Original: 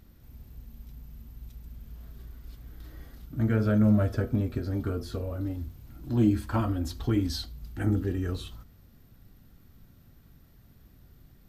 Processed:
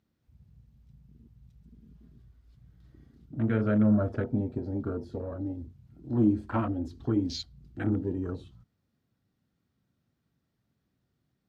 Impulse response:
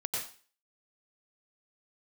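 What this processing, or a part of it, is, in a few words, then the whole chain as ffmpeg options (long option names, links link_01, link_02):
over-cleaned archive recording: -filter_complex "[0:a]asettb=1/sr,asplit=3[link_01][link_02][link_03];[link_01]atrim=end=1.614[link_04];[link_02]atrim=start=1.61:end=2.15,asetpts=PTS-STARTPTS,afade=type=in:duration=0.004:curve=qsin,afade=type=out:start_time=0.536:duration=0.004:curve=qsin,aecho=1:1:4.9:0.53,atrim=end_sample=23814[link_05];[link_03]atrim=start=2.146[link_06];[link_04][link_05]acrossfade=duration=0.004:curve1=hsin:curve2=qsin[link_07];[link_07][link_06]acrossfade=duration=0.004:curve1=qsin:curve2=hsin,highpass=120,lowpass=7800,afwtdn=0.00891"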